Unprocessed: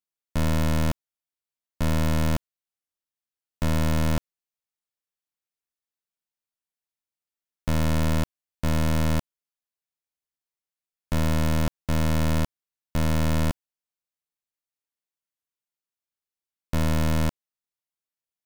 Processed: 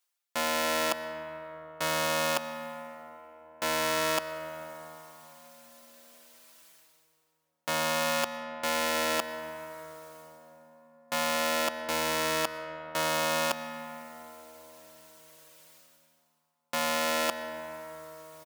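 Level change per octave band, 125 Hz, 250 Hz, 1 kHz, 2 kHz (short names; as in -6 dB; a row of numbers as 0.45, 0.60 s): -23.5, -12.0, +4.5, +5.0 dB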